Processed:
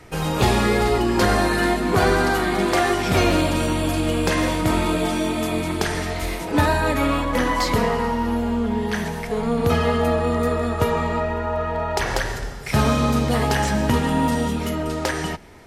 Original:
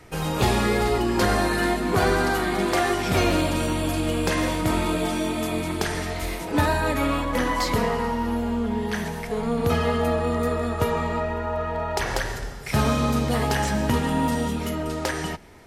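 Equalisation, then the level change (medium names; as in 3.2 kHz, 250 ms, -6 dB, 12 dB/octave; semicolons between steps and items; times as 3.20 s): treble shelf 11 kHz -3.5 dB; +3.0 dB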